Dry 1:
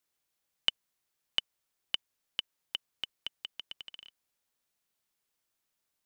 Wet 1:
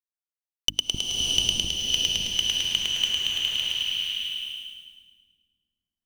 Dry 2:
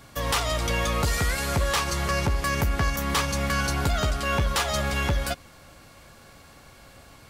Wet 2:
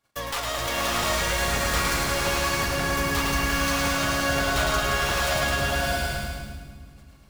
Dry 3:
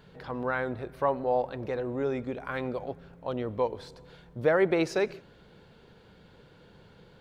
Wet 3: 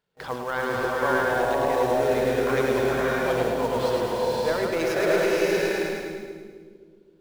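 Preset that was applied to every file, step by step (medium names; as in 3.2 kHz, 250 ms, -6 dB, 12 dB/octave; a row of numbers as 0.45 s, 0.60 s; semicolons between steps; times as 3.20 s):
tracing distortion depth 0.063 ms; in parallel at -6 dB: companded quantiser 4-bit; on the sum: bass shelf 290 Hz -8 dB; gate -44 dBFS, range -33 dB; hum notches 50/100/150/200/250/300 Hz; two-band feedback delay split 310 Hz, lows 261 ms, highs 107 ms, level -5 dB; reverse; compression 6:1, threshold -32 dBFS; reverse; swelling reverb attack 620 ms, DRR -3.5 dB; normalise loudness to -24 LUFS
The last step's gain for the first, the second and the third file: +11.0 dB, +4.5 dB, +7.5 dB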